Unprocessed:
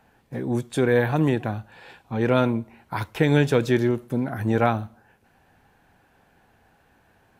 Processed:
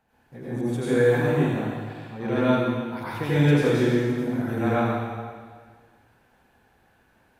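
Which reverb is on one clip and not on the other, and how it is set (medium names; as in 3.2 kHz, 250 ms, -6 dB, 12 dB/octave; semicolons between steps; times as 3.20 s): plate-style reverb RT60 1.7 s, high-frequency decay 1×, pre-delay 75 ms, DRR -10 dB; trim -11.5 dB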